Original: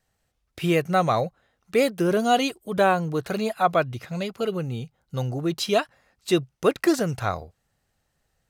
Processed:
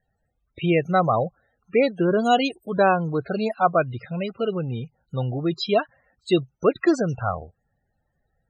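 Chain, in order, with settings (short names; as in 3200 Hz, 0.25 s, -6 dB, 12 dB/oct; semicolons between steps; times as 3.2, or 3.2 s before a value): loudest bins only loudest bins 32; gain +1.5 dB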